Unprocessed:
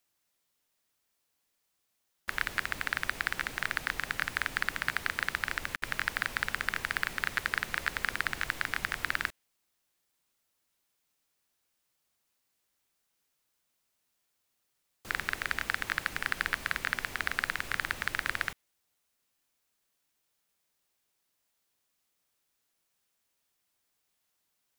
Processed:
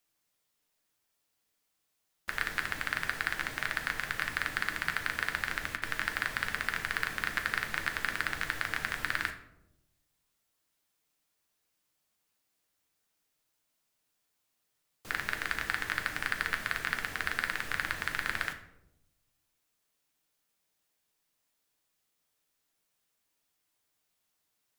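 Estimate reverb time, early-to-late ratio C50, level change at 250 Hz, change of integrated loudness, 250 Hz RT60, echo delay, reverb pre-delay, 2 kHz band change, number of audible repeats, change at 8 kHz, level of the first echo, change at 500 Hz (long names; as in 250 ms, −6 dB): 0.90 s, 11.0 dB, +0.5 dB, −0.5 dB, 1.2 s, no echo audible, 6 ms, −0.5 dB, no echo audible, −0.5 dB, no echo audible, 0.0 dB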